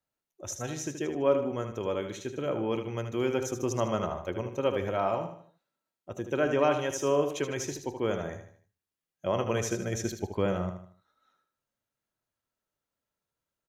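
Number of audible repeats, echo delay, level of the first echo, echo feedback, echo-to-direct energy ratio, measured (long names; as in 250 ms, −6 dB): 4, 77 ms, −8.5 dB, 39%, −8.0 dB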